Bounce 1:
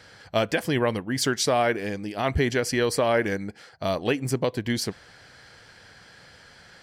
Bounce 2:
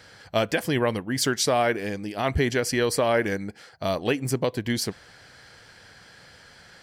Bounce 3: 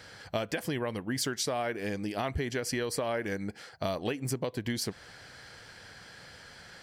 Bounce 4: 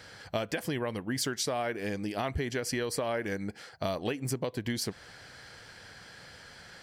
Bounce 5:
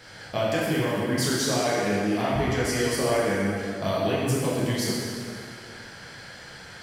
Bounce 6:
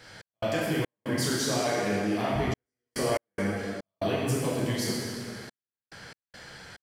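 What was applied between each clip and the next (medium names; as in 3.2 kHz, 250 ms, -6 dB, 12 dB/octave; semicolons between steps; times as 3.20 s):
treble shelf 9.9 kHz +5 dB
compression, threshold -29 dBFS, peak gain reduction 11 dB
no audible change
plate-style reverb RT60 2.3 s, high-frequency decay 0.75×, DRR -7 dB
trance gate "x.xx.xxxxxxx.." 71 bpm -60 dB; trim -3 dB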